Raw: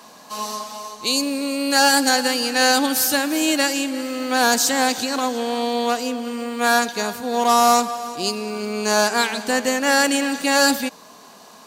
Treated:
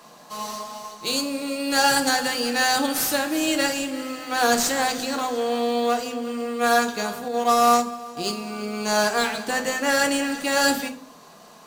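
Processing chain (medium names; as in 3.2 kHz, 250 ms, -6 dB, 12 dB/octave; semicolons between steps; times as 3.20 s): in parallel at -10.5 dB: sample-rate reducer 7.8 kHz, jitter 0%; on the sum: reverberation RT60 0.40 s, pre-delay 6 ms, DRR 5.5 dB; 7.28–8.17 s: upward expansion 1.5:1, over -21 dBFS; trim -5.5 dB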